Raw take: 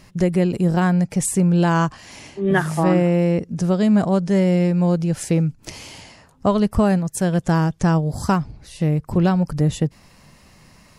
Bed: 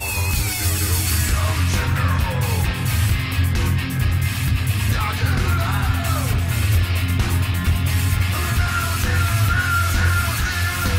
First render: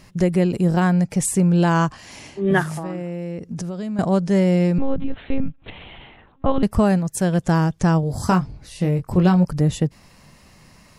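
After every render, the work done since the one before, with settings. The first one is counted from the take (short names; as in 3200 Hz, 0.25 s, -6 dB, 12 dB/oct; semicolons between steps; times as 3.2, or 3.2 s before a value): 2.63–3.99 compressor, threshold -25 dBFS; 4.78–6.63 monotone LPC vocoder at 8 kHz 270 Hz; 8.01–9.45 doubler 22 ms -7 dB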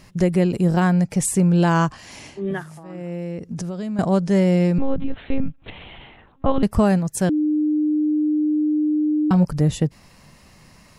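2.29–3.13 dip -12 dB, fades 0.29 s; 7.29–9.31 bleep 303 Hz -16.5 dBFS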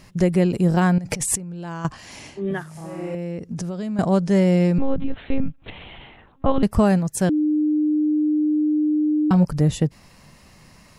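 0.98–1.85 negative-ratio compressor -29 dBFS; 2.72–3.15 flutter echo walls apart 5.3 m, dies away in 1.2 s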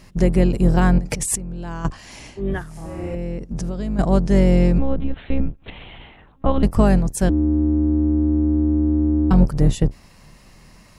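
octaver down 2 oct, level +1 dB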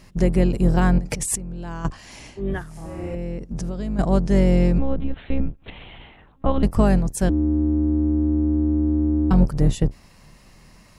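gain -2 dB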